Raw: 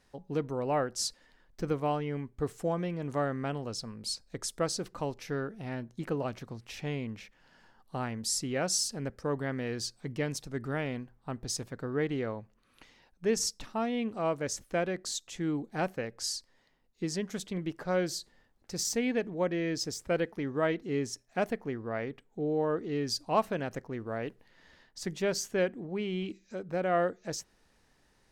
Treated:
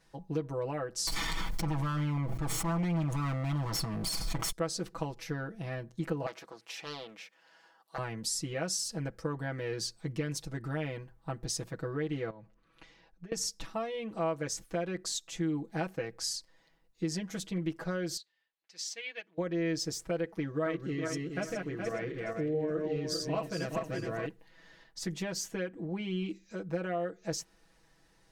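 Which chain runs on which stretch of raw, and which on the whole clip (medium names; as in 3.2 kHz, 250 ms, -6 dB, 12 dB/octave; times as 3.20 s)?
1.07–4.52 s: comb filter that takes the minimum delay 0.9 ms + level flattener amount 100%
6.26–7.98 s: high-pass 450 Hz + loudspeaker Doppler distortion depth 0.39 ms
12.30–13.32 s: compression 16:1, threshold -45 dBFS + distance through air 52 m + tape noise reduction on one side only decoder only
18.17–19.38 s: band-pass filter 3 kHz, Q 1.3 + upward expansion, over -53 dBFS
20.45–24.26 s: backward echo that repeats 209 ms, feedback 54%, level -3 dB + peaking EQ 860 Hz -10 dB 0.34 oct
whole clip: compression, threshold -32 dBFS; comb 6.1 ms, depth 99%; trim -1.5 dB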